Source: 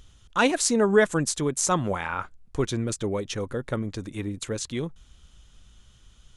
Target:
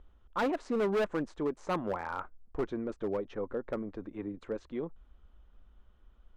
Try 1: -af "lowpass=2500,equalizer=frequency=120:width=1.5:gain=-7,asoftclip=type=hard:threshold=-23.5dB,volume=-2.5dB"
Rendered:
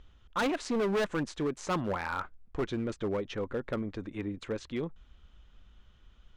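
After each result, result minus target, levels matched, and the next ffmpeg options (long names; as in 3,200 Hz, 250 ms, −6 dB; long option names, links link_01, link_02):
125 Hz band +5.0 dB; 2,000 Hz band +2.5 dB
-af "lowpass=2500,equalizer=frequency=120:width=1.5:gain=-19,asoftclip=type=hard:threshold=-23.5dB,volume=-2.5dB"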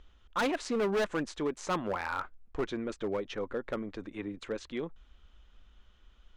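2,000 Hz band +3.5 dB
-af "lowpass=1100,equalizer=frequency=120:width=1.5:gain=-19,asoftclip=type=hard:threshold=-23.5dB,volume=-2.5dB"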